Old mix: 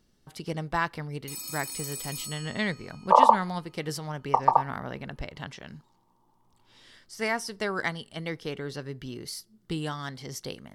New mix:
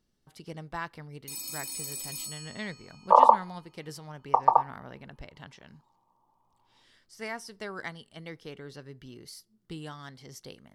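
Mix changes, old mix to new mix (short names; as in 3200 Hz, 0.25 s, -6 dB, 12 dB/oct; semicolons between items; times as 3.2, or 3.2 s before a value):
speech -8.5 dB; first sound: add bell 1400 Hz -11.5 dB 0.43 oct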